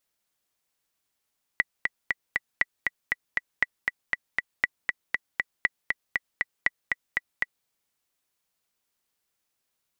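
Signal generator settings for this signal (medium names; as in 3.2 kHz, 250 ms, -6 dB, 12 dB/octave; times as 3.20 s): metronome 237 bpm, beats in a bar 4, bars 6, 1.96 kHz, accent 3.5 dB -7.5 dBFS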